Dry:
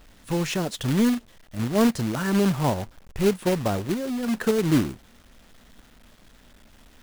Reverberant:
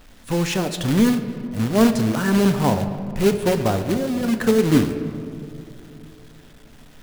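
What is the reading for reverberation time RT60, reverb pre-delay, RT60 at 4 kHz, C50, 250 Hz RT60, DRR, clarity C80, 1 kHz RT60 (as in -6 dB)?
2.9 s, 4 ms, 1.3 s, 9.5 dB, 3.4 s, 7.5 dB, 10.5 dB, 2.4 s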